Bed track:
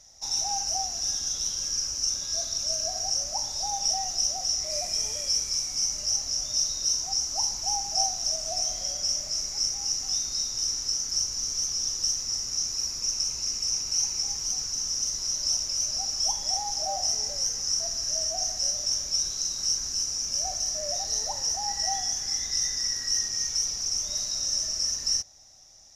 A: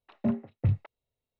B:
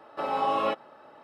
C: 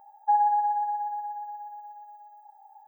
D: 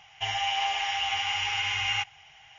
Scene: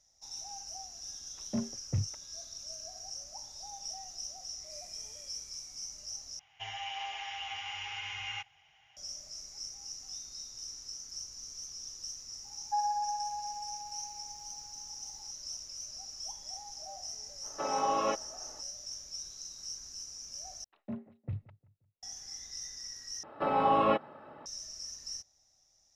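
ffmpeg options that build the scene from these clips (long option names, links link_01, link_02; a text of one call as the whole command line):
ffmpeg -i bed.wav -i cue0.wav -i cue1.wav -i cue2.wav -i cue3.wav -filter_complex "[1:a]asplit=2[link_01][link_02];[2:a]asplit=2[link_03][link_04];[0:a]volume=-15.5dB[link_05];[link_03]highshelf=frequency=4900:gain=-10.5[link_06];[link_02]asplit=2[link_07][link_08];[link_08]adelay=176,lowpass=frequency=2000:poles=1,volume=-21dB,asplit=2[link_09][link_10];[link_10]adelay=176,lowpass=frequency=2000:poles=1,volume=0.4,asplit=2[link_11][link_12];[link_12]adelay=176,lowpass=frequency=2000:poles=1,volume=0.4[link_13];[link_07][link_09][link_11][link_13]amix=inputs=4:normalize=0[link_14];[link_04]bass=frequency=250:gain=9,treble=frequency=4000:gain=-12[link_15];[link_05]asplit=4[link_16][link_17][link_18][link_19];[link_16]atrim=end=6.394[link_20];[4:a]atrim=end=2.58,asetpts=PTS-STARTPTS,volume=-11.5dB[link_21];[link_17]atrim=start=8.966:end=20.644[link_22];[link_14]atrim=end=1.39,asetpts=PTS-STARTPTS,volume=-12.5dB[link_23];[link_18]atrim=start=22.026:end=23.234[link_24];[link_15]atrim=end=1.23[link_25];[link_19]atrim=start=24.456[link_26];[link_01]atrim=end=1.39,asetpts=PTS-STARTPTS,volume=-6.5dB,afade=type=in:duration=0.004:curve=hsin,afade=type=out:start_time=1.386:duration=0.004:curve=hsin,adelay=1290[link_27];[3:a]atrim=end=2.87,asetpts=PTS-STARTPTS,volume=-9.5dB,afade=type=in:duration=0.004:curve=hsin,afade=type=out:start_time=2.866:duration=0.004:curve=hsin,adelay=12440[link_28];[link_06]atrim=end=1.23,asetpts=PTS-STARTPTS,volume=-3.5dB,afade=type=in:duration=0.05,afade=type=out:start_time=1.18:duration=0.05,adelay=17410[link_29];[link_20][link_21]acrossfade=duration=0.004:curve1=hsin:curve2=hsin[link_30];[link_30][link_22]acrossfade=duration=0.004:curve1=hsin:curve2=hsin[link_31];[link_31][link_23]acrossfade=duration=0.004:curve1=hsin:curve2=hsin[link_32];[link_32][link_24]acrossfade=duration=0.004:curve1=hsin:curve2=hsin[link_33];[link_33][link_25]acrossfade=duration=0.004:curve1=hsin:curve2=hsin[link_34];[link_34][link_26]acrossfade=duration=0.004:curve1=hsin:curve2=hsin[link_35];[link_35][link_27][link_28][link_29]amix=inputs=4:normalize=0" out.wav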